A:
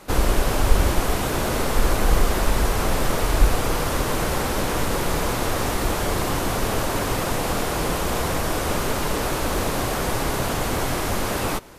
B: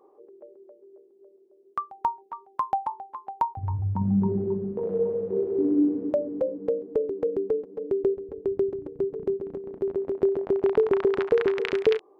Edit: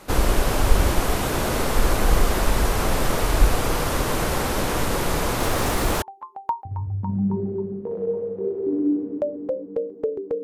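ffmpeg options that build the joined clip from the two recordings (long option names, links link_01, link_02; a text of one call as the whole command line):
ffmpeg -i cue0.wav -i cue1.wav -filter_complex "[0:a]asettb=1/sr,asplit=3[link_01][link_02][link_03];[link_01]atrim=end=5.404[link_04];[link_02]atrim=start=5.4:end=6.02,asetpts=PTS-STARTPTS,afade=type=in:duration=0.004:curve=qsin,afade=type=out:start_time=0.616:duration=0.004:curve=qsin,aeval=exprs='val(0)+0.5*0.0251*sgn(val(0))':channel_layout=same[link_05];[link_03]atrim=start=6.016[link_06];[link_04][link_05]acrossfade=duration=0.004:curve1=hsin:curve2=qsin[link_07];[link_07][link_06]acrossfade=duration=0.004:curve1=qsin:curve2=hsin,apad=whole_dur=10.43,atrim=end=10.43,atrim=end=6.022[link_08];[1:a]atrim=start=2.938:end=7.35[link_09];[link_08][link_09]acrossfade=duration=0.004:curve1=hsin:curve2=hsin" out.wav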